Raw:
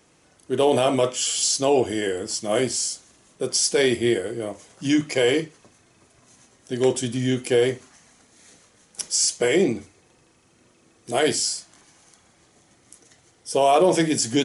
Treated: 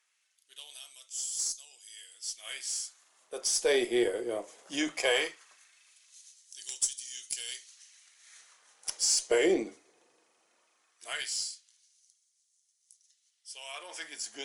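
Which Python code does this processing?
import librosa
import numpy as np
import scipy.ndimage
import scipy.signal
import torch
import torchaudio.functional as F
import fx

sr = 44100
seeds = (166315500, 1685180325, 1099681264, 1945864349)

y = fx.doppler_pass(x, sr, speed_mps=9, closest_m=13.0, pass_at_s=6.66)
y = fx.filter_lfo_highpass(y, sr, shape='sine', hz=0.18, low_hz=390.0, high_hz=6100.0, q=1.2)
y = fx.cheby_harmonics(y, sr, harmonics=(6,), levels_db=(-34,), full_scale_db=-13.5)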